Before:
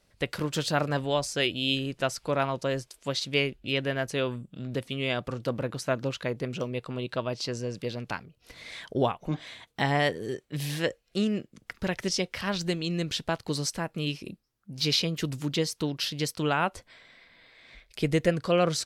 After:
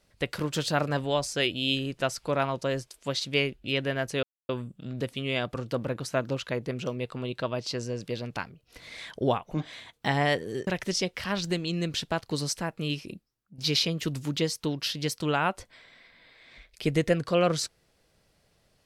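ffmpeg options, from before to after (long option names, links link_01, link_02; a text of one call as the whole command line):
ffmpeg -i in.wav -filter_complex "[0:a]asplit=4[link_01][link_02][link_03][link_04];[link_01]atrim=end=4.23,asetpts=PTS-STARTPTS,afade=type=out:start_time=4.226:duration=0.004:curve=hsin,apad=pad_dur=0.26[link_05];[link_02]atrim=start=4.23:end=10.412,asetpts=PTS-STARTPTS,afade=type=in:duration=0.004:curve=hsin[link_06];[link_03]atrim=start=11.838:end=14.75,asetpts=PTS-STARTPTS,afade=type=out:start_time=2.402:duration=0.51:silence=0.298538[link_07];[link_04]atrim=start=14.75,asetpts=PTS-STARTPTS,afade=type=in:duration=0.004:curve=hsin:silence=0.298538[link_08];[link_05][link_06]concat=n=2:v=0:a=1[link_09];[link_07][link_08]concat=n=2:v=0:a=1[link_10];[link_09][link_10]acrossfade=duration=0.004:curve1=hsin:curve2=hsin" out.wav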